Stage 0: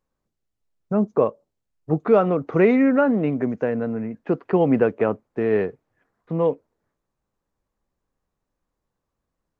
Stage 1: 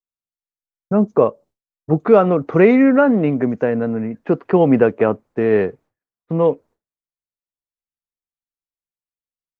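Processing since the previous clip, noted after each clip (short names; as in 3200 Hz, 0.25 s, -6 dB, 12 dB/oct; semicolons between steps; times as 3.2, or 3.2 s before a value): expander -46 dBFS; gain +5 dB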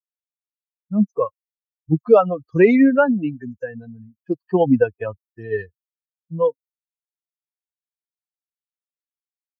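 per-bin expansion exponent 3; gain +2.5 dB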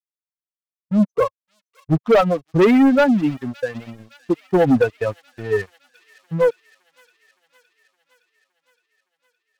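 sample leveller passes 3; thin delay 0.565 s, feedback 67%, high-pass 3000 Hz, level -13 dB; gain -6.5 dB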